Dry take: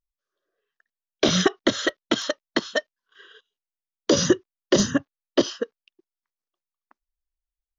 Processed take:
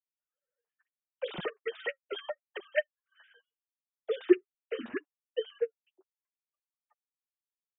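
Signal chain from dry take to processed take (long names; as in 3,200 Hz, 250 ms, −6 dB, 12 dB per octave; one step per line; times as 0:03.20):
three sine waves on the formant tracks
flanger 0.76 Hz, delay 4.9 ms, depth 6.3 ms, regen +15%
level −7.5 dB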